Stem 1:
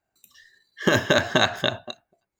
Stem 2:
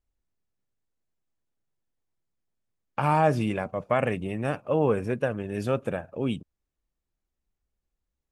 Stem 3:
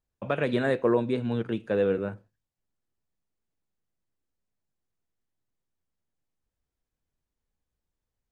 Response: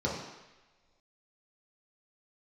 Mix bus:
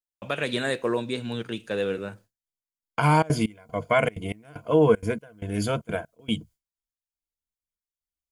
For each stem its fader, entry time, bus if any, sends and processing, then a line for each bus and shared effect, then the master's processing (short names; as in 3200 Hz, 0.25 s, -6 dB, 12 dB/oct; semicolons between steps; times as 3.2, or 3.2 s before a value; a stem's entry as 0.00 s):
off
+0.5 dB, 0.00 s, no send, ripple EQ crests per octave 1.8, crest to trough 13 dB; step gate "...xxxxx.xx" 191 bpm -24 dB
-3.5 dB, 0.00 s, no send, high shelf 2900 Hz +11 dB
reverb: off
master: gate with hold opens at -46 dBFS; high shelf 2500 Hz +9.5 dB